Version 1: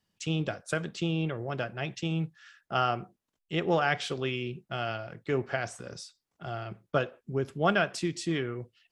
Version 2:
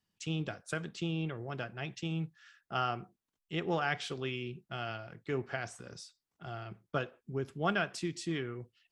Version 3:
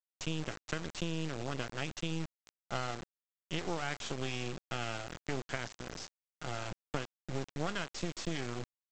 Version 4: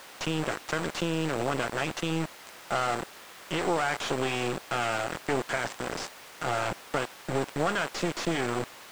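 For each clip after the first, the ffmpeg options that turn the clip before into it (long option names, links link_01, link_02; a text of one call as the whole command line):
ffmpeg -i in.wav -af "equalizer=frequency=570:width_type=o:width=0.49:gain=-4.5,volume=-5dB" out.wav
ffmpeg -i in.wav -af "acompressor=threshold=-37dB:ratio=6,aresample=16000,acrusher=bits=5:dc=4:mix=0:aa=0.000001,aresample=44100,volume=6.5dB" out.wav
ffmpeg -i in.wav -filter_complex "[0:a]aeval=exprs='val(0)+0.5*0.00891*sgn(val(0))':channel_layout=same,asplit=2[link_01][link_02];[link_02]highpass=frequency=720:poles=1,volume=19dB,asoftclip=type=tanh:threshold=-16.5dB[link_03];[link_01][link_03]amix=inputs=2:normalize=0,lowpass=frequency=1100:poles=1,volume=-6dB,volume=4.5dB" out.wav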